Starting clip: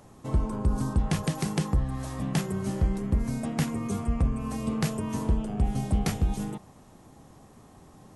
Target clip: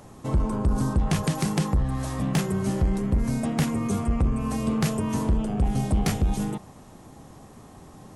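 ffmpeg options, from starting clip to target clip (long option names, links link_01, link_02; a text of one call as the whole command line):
ffmpeg -i in.wav -af "asoftclip=type=tanh:threshold=-21dB,volume=5.5dB" out.wav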